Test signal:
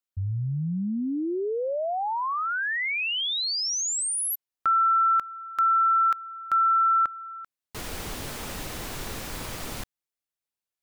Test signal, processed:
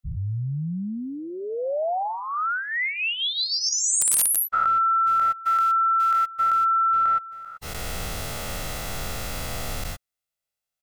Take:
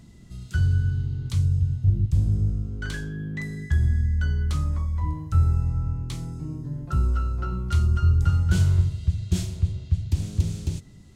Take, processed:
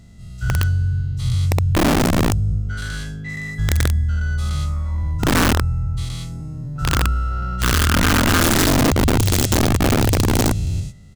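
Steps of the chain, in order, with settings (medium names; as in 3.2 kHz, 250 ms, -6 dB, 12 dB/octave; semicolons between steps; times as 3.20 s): every event in the spectrogram widened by 240 ms; comb 1.5 ms, depth 48%; integer overflow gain 8.5 dB; trim -3 dB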